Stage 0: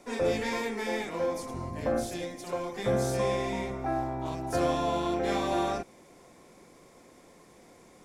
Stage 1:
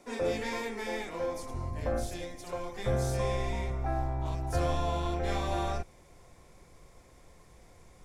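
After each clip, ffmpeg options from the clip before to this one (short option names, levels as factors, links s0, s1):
-af "asubboost=boost=11.5:cutoff=74,volume=0.708"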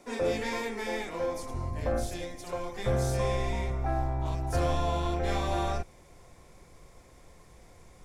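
-af "asoftclip=type=hard:threshold=0.0794,volume=1.26"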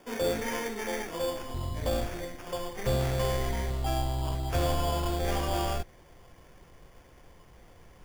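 -af "acrusher=samples=11:mix=1:aa=0.000001"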